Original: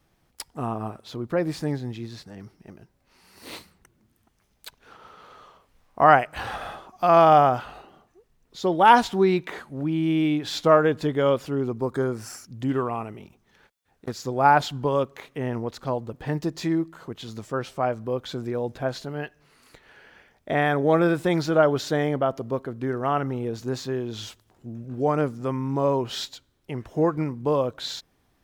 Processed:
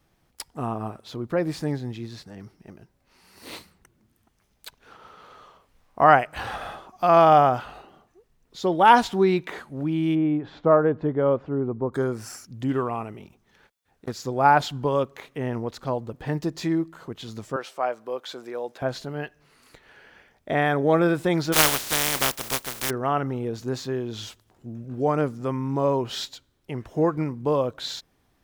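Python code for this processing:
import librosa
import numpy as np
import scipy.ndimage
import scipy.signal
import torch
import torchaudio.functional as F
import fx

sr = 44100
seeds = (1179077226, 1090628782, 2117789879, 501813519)

y = fx.lowpass(x, sr, hz=1200.0, slope=12, at=(10.14, 11.92), fade=0.02)
y = fx.highpass(y, sr, hz=480.0, slope=12, at=(17.56, 18.82))
y = fx.spec_flatten(y, sr, power=0.18, at=(21.52, 22.89), fade=0.02)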